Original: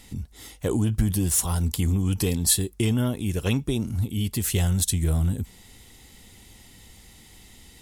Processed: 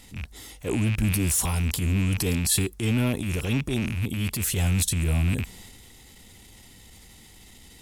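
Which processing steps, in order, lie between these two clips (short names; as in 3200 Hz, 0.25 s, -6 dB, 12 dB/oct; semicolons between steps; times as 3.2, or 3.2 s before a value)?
rattling part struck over -30 dBFS, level -23 dBFS; transient shaper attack -9 dB, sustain +5 dB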